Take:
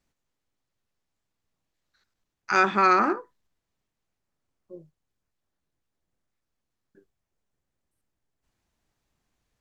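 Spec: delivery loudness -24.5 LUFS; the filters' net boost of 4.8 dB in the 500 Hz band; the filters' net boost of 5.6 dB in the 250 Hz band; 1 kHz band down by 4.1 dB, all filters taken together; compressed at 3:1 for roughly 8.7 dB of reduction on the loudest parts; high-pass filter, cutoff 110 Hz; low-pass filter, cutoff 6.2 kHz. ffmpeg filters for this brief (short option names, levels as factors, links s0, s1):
-af "highpass=110,lowpass=6200,equalizer=f=250:t=o:g=7,equalizer=f=500:t=o:g=5,equalizer=f=1000:t=o:g=-7.5,acompressor=threshold=0.0398:ratio=3,volume=2.37"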